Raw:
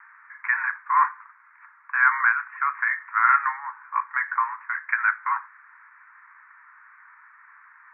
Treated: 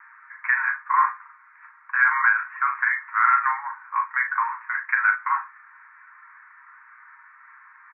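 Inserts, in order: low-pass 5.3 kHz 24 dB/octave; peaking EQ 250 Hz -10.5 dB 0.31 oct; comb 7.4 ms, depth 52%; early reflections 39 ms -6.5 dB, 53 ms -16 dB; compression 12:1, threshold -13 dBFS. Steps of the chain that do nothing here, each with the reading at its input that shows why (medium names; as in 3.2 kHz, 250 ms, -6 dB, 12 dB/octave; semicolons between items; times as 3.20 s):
low-pass 5.3 kHz: input has nothing above 2.4 kHz; peaking EQ 250 Hz: input has nothing below 760 Hz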